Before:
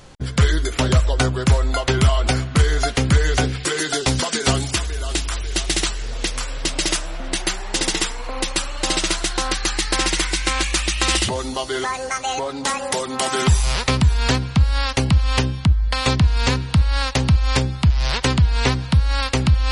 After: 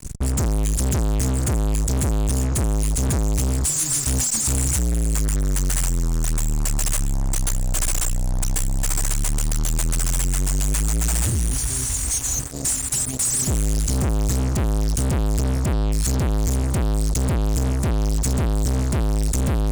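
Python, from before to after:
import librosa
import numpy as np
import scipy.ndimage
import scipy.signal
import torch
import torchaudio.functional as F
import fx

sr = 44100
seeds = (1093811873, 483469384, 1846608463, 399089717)

y = scipy.signal.sosfilt(scipy.signal.ellip(3, 1.0, 50, [160.0, 7400.0], 'bandstop', fs=sr, output='sos'), x)
y = y + 1.0 * np.pad(y, (int(2.9 * sr / 1000.0), 0))[:len(y)]
y = fx.fuzz(y, sr, gain_db=41.0, gate_db=-42.0)
y = y * 10.0 ** (-5.5 / 20.0)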